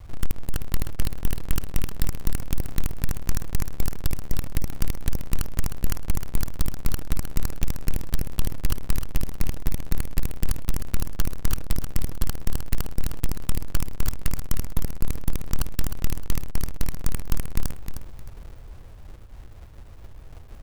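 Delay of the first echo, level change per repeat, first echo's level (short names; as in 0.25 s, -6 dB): 0.309 s, -11.0 dB, -8.0 dB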